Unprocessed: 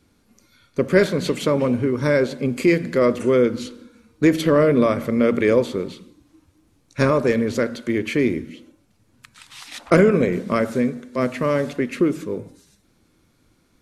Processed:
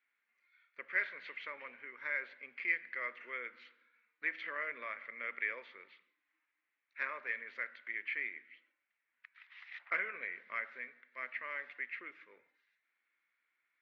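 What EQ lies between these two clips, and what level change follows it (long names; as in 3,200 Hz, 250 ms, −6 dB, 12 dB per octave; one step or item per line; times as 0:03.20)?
four-pole ladder band-pass 2,200 Hz, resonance 65%
high-frequency loss of the air 250 metres
high-shelf EQ 2,400 Hz −11 dB
+3.5 dB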